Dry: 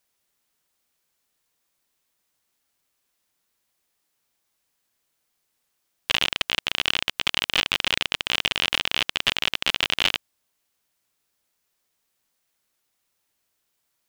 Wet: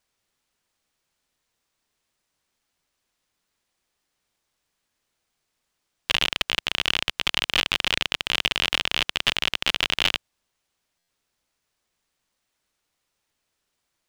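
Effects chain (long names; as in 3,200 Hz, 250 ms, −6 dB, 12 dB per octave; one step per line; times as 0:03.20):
running median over 3 samples
low-shelf EQ 86 Hz +5.5 dB
buffer that repeats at 0:10.98, samples 512, times 8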